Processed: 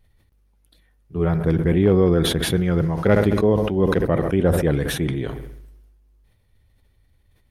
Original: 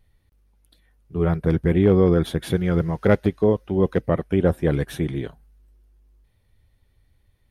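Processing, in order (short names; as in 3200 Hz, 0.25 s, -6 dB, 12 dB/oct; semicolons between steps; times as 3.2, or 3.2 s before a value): dark delay 67 ms, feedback 55%, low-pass 2700 Hz, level -19.5 dB; sustainer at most 40 dB/s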